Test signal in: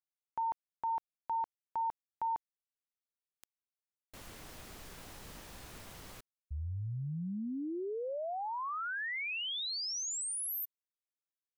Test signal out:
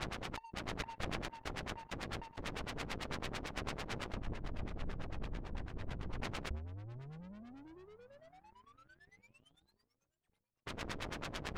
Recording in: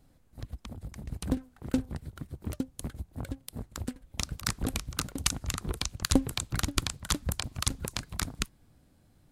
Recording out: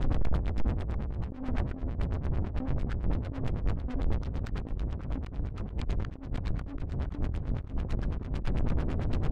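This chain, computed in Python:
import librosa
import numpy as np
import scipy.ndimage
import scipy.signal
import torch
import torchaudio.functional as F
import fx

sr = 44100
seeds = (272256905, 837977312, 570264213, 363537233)

y = x + 0.5 * 10.0 ** (-20.5 / 20.0) * np.sign(x)
y = fx.over_compress(y, sr, threshold_db=-32.0, ratio=-0.5)
y = fx.tilt_eq(y, sr, slope=-2.5)
y = fx.echo_swing(y, sr, ms=1194, ratio=1.5, feedback_pct=54, wet_db=-22.0)
y = fx.filter_lfo_lowpass(y, sr, shape='sine', hz=9.0, low_hz=270.0, high_hz=3200.0, q=0.89)
y = fx.high_shelf(y, sr, hz=2100.0, db=6.5)
y = fx.power_curve(y, sr, exponent=2.0)
y = fx.sustainer(y, sr, db_per_s=92.0)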